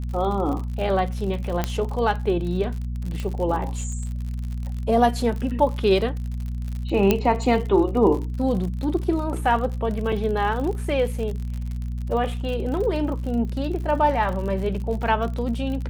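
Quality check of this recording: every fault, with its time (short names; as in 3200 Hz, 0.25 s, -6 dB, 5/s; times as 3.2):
crackle 56/s -30 dBFS
hum 60 Hz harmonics 4 -28 dBFS
1.64 pop -8 dBFS
3.2 pop -17 dBFS
7.11 pop -5 dBFS
10.12 gap 4.8 ms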